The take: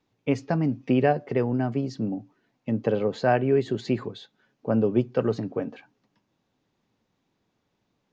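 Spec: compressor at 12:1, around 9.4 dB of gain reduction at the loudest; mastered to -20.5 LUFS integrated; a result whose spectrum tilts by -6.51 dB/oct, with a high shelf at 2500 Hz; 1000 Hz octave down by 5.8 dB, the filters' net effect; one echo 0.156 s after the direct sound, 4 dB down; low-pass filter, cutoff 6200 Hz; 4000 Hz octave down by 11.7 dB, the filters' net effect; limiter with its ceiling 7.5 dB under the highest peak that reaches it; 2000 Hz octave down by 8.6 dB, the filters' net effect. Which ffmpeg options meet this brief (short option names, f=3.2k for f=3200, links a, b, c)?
-af "lowpass=6.2k,equalizer=f=1k:t=o:g=-8,equalizer=f=2k:t=o:g=-4,highshelf=f=2.5k:g=-6.5,equalizer=f=4k:t=o:g=-7,acompressor=threshold=-27dB:ratio=12,alimiter=level_in=1dB:limit=-24dB:level=0:latency=1,volume=-1dB,aecho=1:1:156:0.631,volume=14.5dB"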